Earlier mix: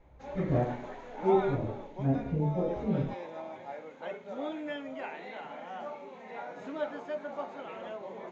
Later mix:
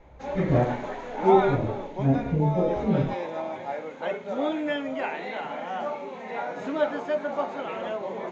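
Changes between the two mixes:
speech +6.0 dB; background +9.5 dB

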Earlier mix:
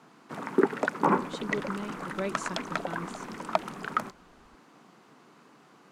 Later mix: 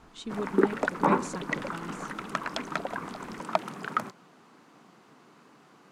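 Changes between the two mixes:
speech: entry -1.15 s; master: add bell 61 Hz +5.5 dB 1.1 oct

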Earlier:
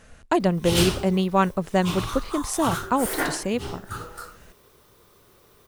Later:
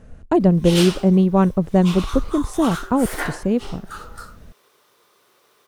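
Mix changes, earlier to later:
speech: add tilt shelf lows +9.5 dB, about 800 Hz; background: add weighting filter A

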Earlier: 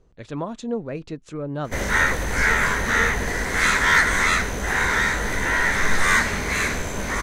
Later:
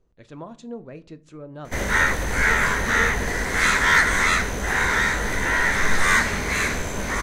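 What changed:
speech -10.0 dB; reverb: on, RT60 0.50 s

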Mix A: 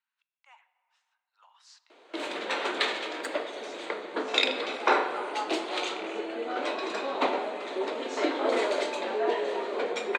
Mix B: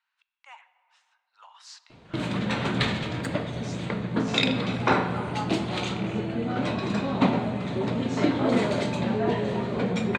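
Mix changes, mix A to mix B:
speech +9.0 dB; master: remove steep high-pass 340 Hz 36 dB/oct

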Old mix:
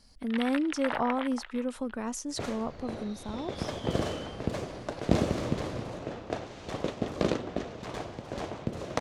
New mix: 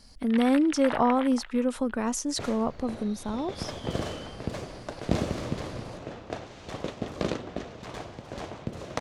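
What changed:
speech +6.0 dB; second sound: add bell 380 Hz -2.5 dB 2.3 oct

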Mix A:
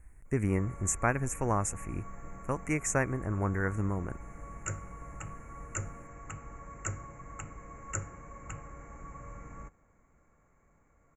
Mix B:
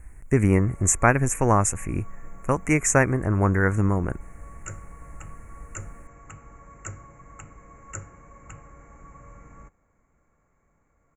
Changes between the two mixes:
speech +10.0 dB; reverb: off

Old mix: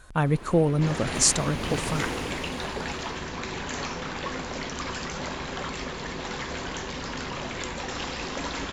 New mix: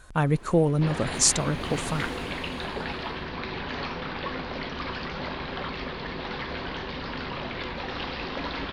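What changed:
first sound -6.0 dB; second sound: add steep low-pass 4700 Hz 48 dB/oct

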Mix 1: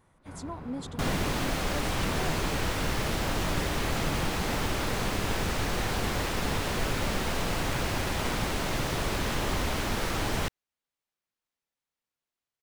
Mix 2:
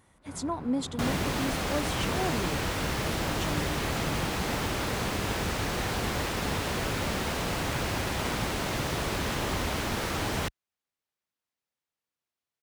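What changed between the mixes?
speech +7.5 dB; master: add HPF 46 Hz

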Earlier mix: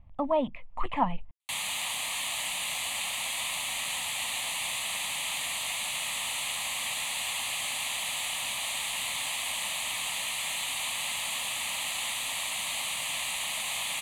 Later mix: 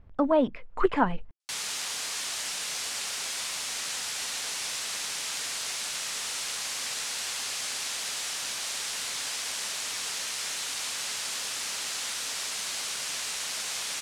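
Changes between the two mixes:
background -5.5 dB; master: remove fixed phaser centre 1500 Hz, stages 6

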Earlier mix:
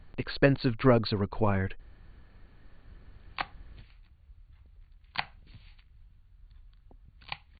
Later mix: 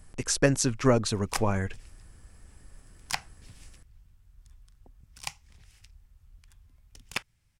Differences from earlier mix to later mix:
background: entry -2.05 s; master: remove brick-wall FIR low-pass 4600 Hz

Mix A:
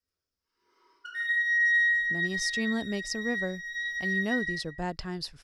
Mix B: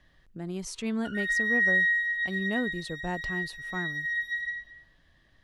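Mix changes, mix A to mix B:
speech: entry -1.75 s; master: add bell 5100 Hz -14 dB 0.34 oct

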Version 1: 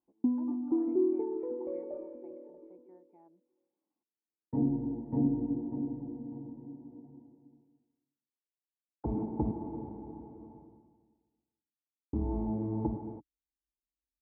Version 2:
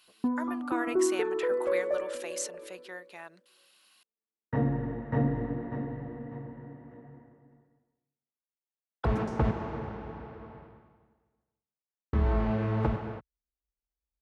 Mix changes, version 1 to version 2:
background -6.0 dB; master: remove vocal tract filter u

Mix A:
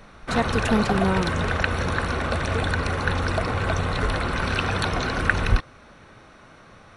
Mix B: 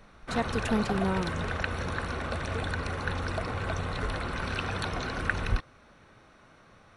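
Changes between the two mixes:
speech -6.0 dB; background -8.0 dB

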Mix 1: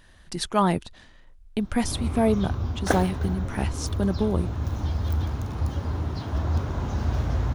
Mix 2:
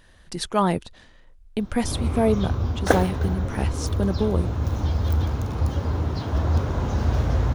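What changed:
background +3.5 dB; master: add bell 490 Hz +4.5 dB 0.41 oct

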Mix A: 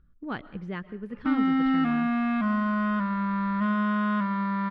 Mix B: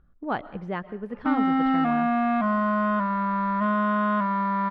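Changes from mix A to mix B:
background: send -8.0 dB; master: add bell 730 Hz +12.5 dB 1.3 oct

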